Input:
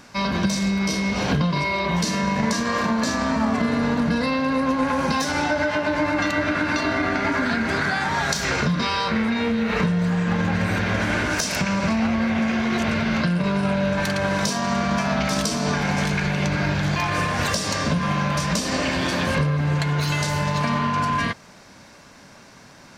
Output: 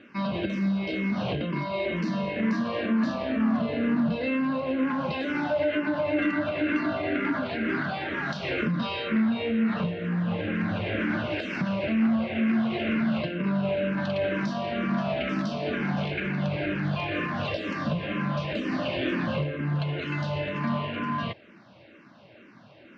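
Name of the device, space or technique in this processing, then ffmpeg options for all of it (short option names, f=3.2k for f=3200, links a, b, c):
barber-pole phaser into a guitar amplifier: -filter_complex "[0:a]asplit=2[a][b];[b]afreqshift=-2.1[c];[a][c]amix=inputs=2:normalize=1,asoftclip=type=tanh:threshold=-16dB,highpass=97,equalizer=f=120:t=q:w=4:g=5,equalizer=f=220:t=q:w=4:g=5,equalizer=f=330:t=q:w=4:g=10,equalizer=f=600:t=q:w=4:g=6,equalizer=f=910:t=q:w=4:g=-4,equalizer=f=2.8k:t=q:w=4:g=6,lowpass=f=3.6k:w=0.5412,lowpass=f=3.6k:w=1.3066,volume=-4.5dB"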